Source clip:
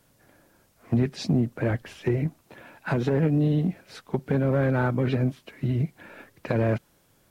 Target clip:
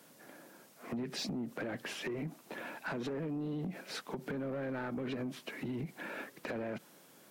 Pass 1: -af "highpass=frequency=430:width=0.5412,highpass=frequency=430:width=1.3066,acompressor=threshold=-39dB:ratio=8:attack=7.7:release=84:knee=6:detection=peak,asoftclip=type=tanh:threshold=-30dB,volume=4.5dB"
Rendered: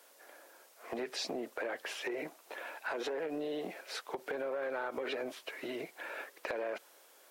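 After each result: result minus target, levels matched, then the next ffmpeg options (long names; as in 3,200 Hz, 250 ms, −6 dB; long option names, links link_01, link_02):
250 Hz band −6.5 dB; soft clipping: distortion −9 dB
-af "highpass=frequency=180:width=0.5412,highpass=frequency=180:width=1.3066,acompressor=threshold=-39dB:ratio=8:attack=7.7:release=84:knee=6:detection=peak,asoftclip=type=tanh:threshold=-30dB,volume=4.5dB"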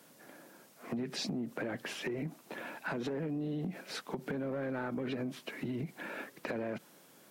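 soft clipping: distortion −8 dB
-af "highpass=frequency=180:width=0.5412,highpass=frequency=180:width=1.3066,acompressor=threshold=-39dB:ratio=8:attack=7.7:release=84:knee=6:detection=peak,asoftclip=type=tanh:threshold=-36dB,volume=4.5dB"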